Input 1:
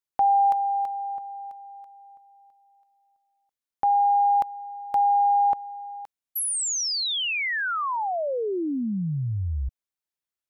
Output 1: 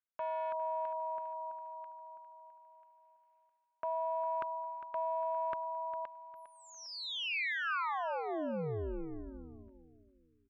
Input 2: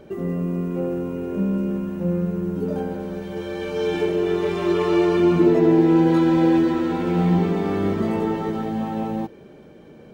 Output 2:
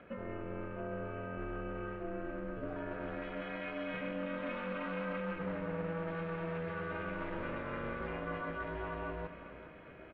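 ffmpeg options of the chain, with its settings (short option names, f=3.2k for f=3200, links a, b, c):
-af "aeval=exprs='clip(val(0),-1,0.141)':c=same,dynaudnorm=f=720:g=7:m=7dB,highpass=360,equalizer=f=400:t=q:w=4:g=-4,equalizer=f=620:t=q:w=4:g=-10,equalizer=f=900:t=q:w=4:g=-5,equalizer=f=1.4k:t=q:w=4:g=9,equalizer=f=2.4k:t=q:w=4:g=4,lowpass=f=2.8k:w=0.5412,lowpass=f=2.8k:w=1.3066,areverse,acompressor=threshold=-32dB:ratio=6:attack=2.2:release=349:knee=6:detection=rms,areverse,aeval=exprs='val(0)*sin(2*PI*160*n/s)':c=same,aecho=1:1:404|808|1212|1616:0.224|0.0806|0.029|0.0104"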